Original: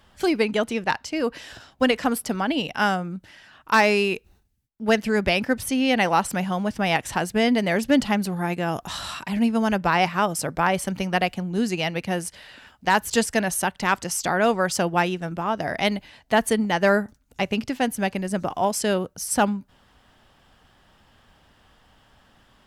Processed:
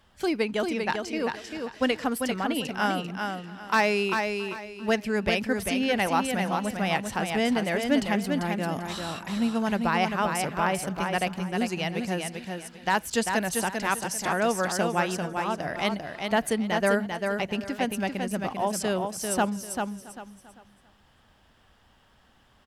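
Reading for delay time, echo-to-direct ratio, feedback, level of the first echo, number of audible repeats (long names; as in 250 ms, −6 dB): 394 ms, −4.5 dB, repeats not evenly spaced, −5.0 dB, 5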